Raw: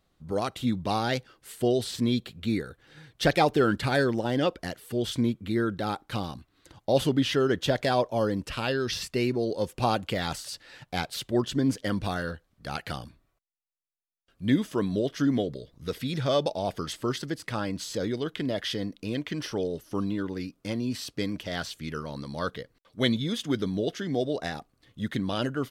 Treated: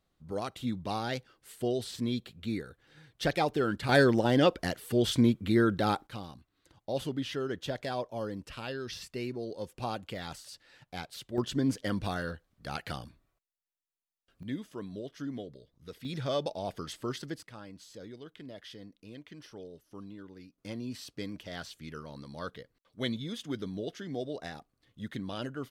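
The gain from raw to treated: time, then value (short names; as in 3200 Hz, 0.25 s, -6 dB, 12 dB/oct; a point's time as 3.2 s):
-6.5 dB
from 3.89 s +2 dB
from 6.07 s -10 dB
from 11.38 s -3.5 dB
from 14.43 s -13.5 dB
from 16.05 s -6.5 dB
from 17.43 s -16.5 dB
from 20.58 s -8.5 dB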